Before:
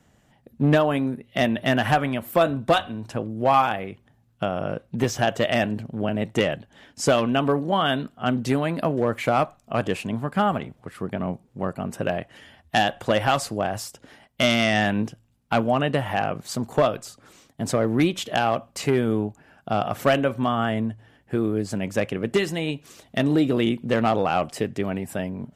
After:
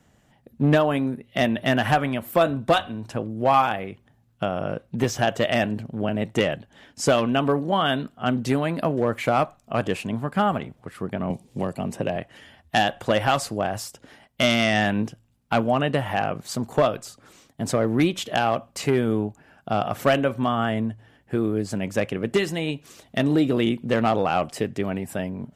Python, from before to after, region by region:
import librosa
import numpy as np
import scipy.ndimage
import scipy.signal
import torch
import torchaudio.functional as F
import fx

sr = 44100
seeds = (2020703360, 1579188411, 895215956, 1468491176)

y = fx.chain(x, sr, fx.lowpass(hz=12000.0, slope=12),
    fx.peak_eq(hz=1400.0, db=-9.0, octaves=0.49),
    fx.band_squash(depth_pct=70), at=(11.3, 12.16))